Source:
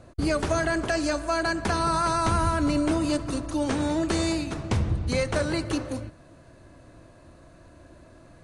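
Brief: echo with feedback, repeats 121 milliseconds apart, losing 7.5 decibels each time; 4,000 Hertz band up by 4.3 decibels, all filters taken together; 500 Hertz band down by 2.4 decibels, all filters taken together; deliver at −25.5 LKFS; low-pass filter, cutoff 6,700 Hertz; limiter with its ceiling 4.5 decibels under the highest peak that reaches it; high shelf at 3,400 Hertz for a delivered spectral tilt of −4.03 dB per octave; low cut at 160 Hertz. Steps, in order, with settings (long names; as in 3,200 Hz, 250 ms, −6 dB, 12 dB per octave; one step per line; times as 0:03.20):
high-pass filter 160 Hz
low-pass filter 6,700 Hz
parametric band 500 Hz −3.5 dB
high-shelf EQ 3,400 Hz +3 dB
parametric band 4,000 Hz +3.5 dB
brickwall limiter −18 dBFS
repeating echo 121 ms, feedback 42%, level −7.5 dB
level +2.5 dB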